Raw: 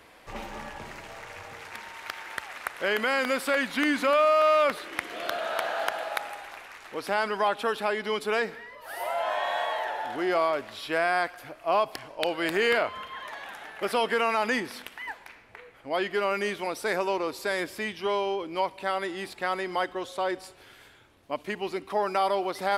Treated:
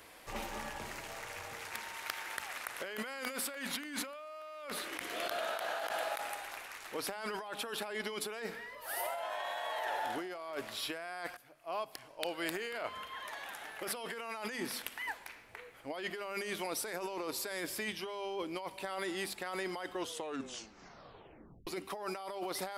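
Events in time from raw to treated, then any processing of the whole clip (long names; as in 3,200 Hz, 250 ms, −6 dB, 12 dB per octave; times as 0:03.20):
0:11.37–0:15.10: fade in equal-power, from −17.5 dB
0:19.95: tape stop 1.72 s
whole clip: high-shelf EQ 6,000 Hz +11.5 dB; mains-hum notches 50/100/150/200/250 Hz; compressor whose output falls as the input rises −32 dBFS, ratio −1; level −7.5 dB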